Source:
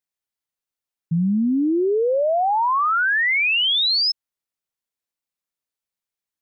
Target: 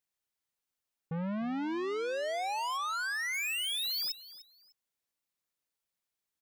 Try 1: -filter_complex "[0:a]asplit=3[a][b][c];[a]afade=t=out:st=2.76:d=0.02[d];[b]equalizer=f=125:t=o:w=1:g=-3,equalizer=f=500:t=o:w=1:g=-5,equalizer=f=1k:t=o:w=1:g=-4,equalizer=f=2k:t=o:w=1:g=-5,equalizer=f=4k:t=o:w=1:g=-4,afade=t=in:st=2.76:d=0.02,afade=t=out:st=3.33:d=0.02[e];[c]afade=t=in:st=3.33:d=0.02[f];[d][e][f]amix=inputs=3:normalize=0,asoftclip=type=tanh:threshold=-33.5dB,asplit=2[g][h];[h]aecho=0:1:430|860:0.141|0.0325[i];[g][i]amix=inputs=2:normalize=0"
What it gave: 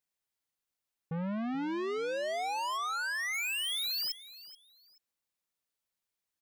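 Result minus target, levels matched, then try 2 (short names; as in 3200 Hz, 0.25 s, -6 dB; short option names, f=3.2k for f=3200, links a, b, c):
echo 0.129 s late
-filter_complex "[0:a]asplit=3[a][b][c];[a]afade=t=out:st=2.76:d=0.02[d];[b]equalizer=f=125:t=o:w=1:g=-3,equalizer=f=500:t=o:w=1:g=-5,equalizer=f=1k:t=o:w=1:g=-4,equalizer=f=2k:t=o:w=1:g=-5,equalizer=f=4k:t=o:w=1:g=-4,afade=t=in:st=2.76:d=0.02,afade=t=out:st=3.33:d=0.02[e];[c]afade=t=in:st=3.33:d=0.02[f];[d][e][f]amix=inputs=3:normalize=0,asoftclip=type=tanh:threshold=-33.5dB,asplit=2[g][h];[h]aecho=0:1:301|602:0.141|0.0325[i];[g][i]amix=inputs=2:normalize=0"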